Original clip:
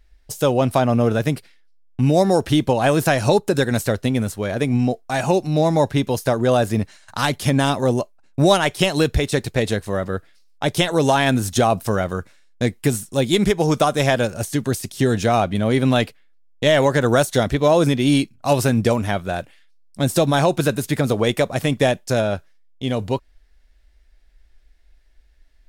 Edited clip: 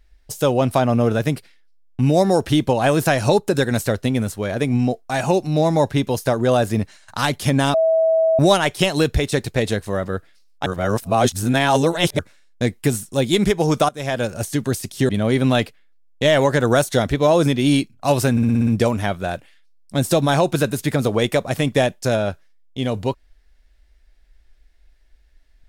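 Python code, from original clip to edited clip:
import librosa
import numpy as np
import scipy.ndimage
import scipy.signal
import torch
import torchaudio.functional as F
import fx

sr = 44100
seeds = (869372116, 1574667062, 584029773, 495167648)

y = fx.edit(x, sr, fx.bleep(start_s=7.74, length_s=0.65, hz=648.0, db=-13.0),
    fx.reverse_span(start_s=10.66, length_s=1.53),
    fx.fade_in_from(start_s=13.89, length_s=0.45, floor_db=-21.0),
    fx.cut(start_s=15.09, length_s=0.41),
    fx.stutter(start_s=18.72, slice_s=0.06, count=7), tone=tone)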